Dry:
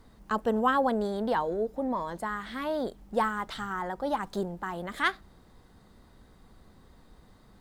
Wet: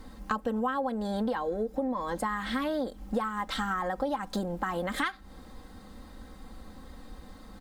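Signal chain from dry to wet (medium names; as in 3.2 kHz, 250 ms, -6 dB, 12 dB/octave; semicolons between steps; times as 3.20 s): comb 3.8 ms, depth 65%; compression 12:1, threshold -34 dBFS, peak gain reduction 18 dB; trim +7 dB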